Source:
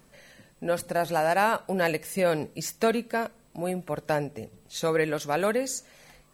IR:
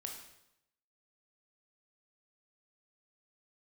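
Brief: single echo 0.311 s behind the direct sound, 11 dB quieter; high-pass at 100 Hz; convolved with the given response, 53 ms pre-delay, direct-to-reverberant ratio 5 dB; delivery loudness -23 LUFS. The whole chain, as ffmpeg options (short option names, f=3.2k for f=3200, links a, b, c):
-filter_complex "[0:a]highpass=100,aecho=1:1:311:0.282,asplit=2[a][b];[1:a]atrim=start_sample=2205,adelay=53[c];[b][c]afir=irnorm=-1:irlink=0,volume=-2.5dB[d];[a][d]amix=inputs=2:normalize=0,volume=3.5dB"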